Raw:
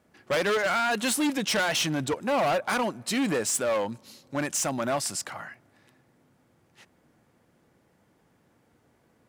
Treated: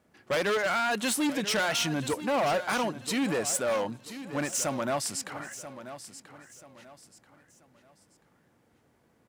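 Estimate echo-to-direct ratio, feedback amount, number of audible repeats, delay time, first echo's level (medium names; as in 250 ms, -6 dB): -12.5 dB, 33%, 3, 985 ms, -13.0 dB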